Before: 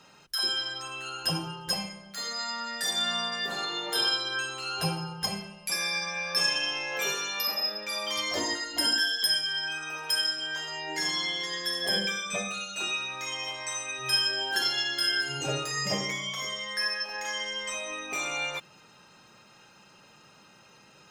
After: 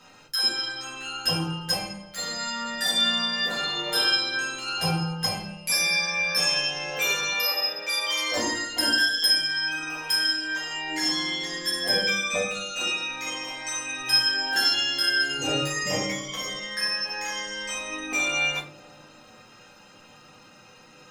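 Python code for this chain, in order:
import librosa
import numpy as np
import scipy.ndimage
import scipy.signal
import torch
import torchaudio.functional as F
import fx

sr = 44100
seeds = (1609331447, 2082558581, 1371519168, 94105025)

y = fx.highpass(x, sr, hz=370.0, slope=24, at=(7.32, 8.32))
y = fx.echo_bbd(y, sr, ms=457, stages=2048, feedback_pct=55, wet_db=-16.0)
y = fx.room_shoebox(y, sr, seeds[0], volume_m3=150.0, walls='furnished', distance_m=2.0)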